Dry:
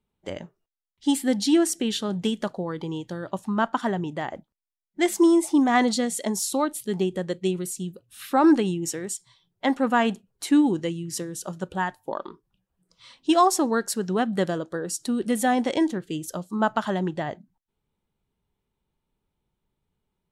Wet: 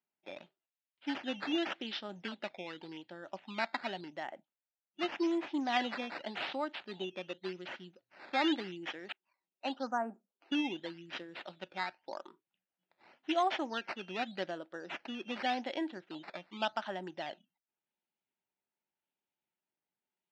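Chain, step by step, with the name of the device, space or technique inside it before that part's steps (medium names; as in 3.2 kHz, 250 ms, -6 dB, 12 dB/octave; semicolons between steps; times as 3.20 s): 9.12–10.52 s: elliptic band-pass 210–1400 Hz, stop band 40 dB; circuit-bent sampling toy (decimation with a swept rate 10×, swing 100% 0.87 Hz; cabinet simulation 400–4100 Hz, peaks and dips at 450 Hz -10 dB, 1.1 kHz -8 dB, 2.8 kHz +3 dB); trim -8 dB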